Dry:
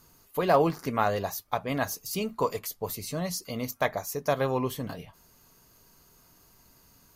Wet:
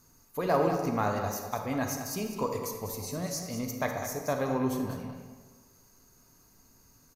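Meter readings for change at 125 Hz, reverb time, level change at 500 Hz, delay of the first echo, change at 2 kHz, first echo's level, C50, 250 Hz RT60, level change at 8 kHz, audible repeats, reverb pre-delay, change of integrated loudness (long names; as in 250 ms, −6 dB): −1.0 dB, 1.4 s, −3.0 dB, 199 ms, −3.5 dB, −10.0 dB, 3.5 dB, 1.5 s, 0.0 dB, 1, 34 ms, −2.0 dB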